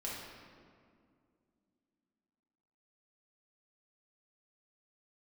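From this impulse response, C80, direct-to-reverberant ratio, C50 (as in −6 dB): 2.0 dB, −6.0 dB, −0.5 dB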